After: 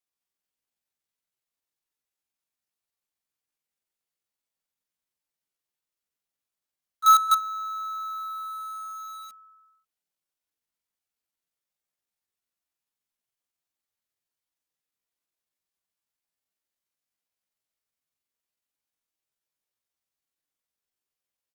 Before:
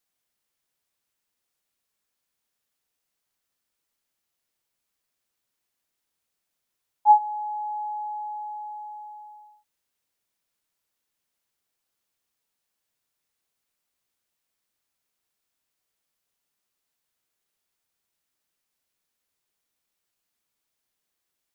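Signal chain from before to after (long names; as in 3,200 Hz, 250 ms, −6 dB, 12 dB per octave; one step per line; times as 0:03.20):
dynamic equaliser 700 Hz, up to +4 dB, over −39 dBFS, Q 5.9
multi-tap delay 58/134/225 ms −9.5/−17.5/−3 dB
pitch shifter +7.5 semitones
in parallel at −7.5 dB: log-companded quantiser 2 bits
on the sum: level −8.5 dB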